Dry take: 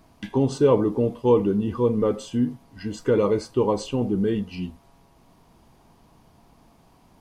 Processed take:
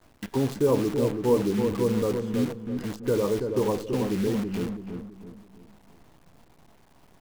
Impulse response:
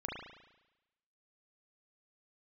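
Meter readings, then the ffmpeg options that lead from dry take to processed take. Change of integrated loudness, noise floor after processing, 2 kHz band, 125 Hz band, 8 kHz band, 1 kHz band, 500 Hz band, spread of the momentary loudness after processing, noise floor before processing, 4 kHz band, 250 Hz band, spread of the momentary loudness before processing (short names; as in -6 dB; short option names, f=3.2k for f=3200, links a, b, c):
-3.5 dB, -57 dBFS, 0.0 dB, -2.5 dB, +1.0 dB, -4.5 dB, -3.5 dB, 10 LU, -57 dBFS, -1.0 dB, -2.5 dB, 11 LU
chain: -filter_complex "[0:a]highshelf=f=2.2k:g=-10.5,asplit=2[a][b];[b]acompressor=threshold=-35dB:ratio=8,volume=-1.5dB[c];[a][c]amix=inputs=2:normalize=0,acrusher=bits=6:dc=4:mix=0:aa=0.000001,asplit=2[d][e];[e]adelay=330,lowpass=f=1.1k:p=1,volume=-5dB,asplit=2[f][g];[g]adelay=330,lowpass=f=1.1k:p=1,volume=0.42,asplit=2[h][i];[i]adelay=330,lowpass=f=1.1k:p=1,volume=0.42,asplit=2[j][k];[k]adelay=330,lowpass=f=1.1k:p=1,volume=0.42,asplit=2[l][m];[m]adelay=330,lowpass=f=1.1k:p=1,volume=0.42[n];[d][f][h][j][l][n]amix=inputs=6:normalize=0,volume=-5dB"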